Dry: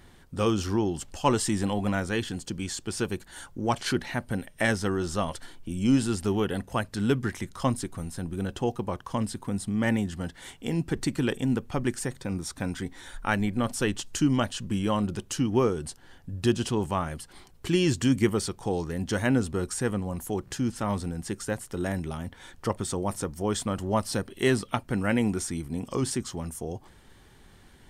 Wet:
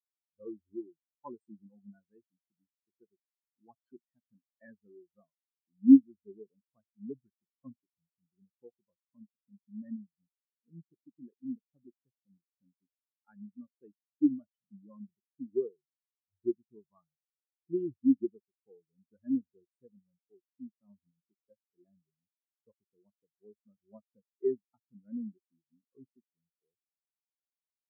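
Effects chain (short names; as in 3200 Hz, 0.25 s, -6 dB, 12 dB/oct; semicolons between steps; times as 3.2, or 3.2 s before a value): HPF 130 Hz 6 dB/oct; spectral expander 4:1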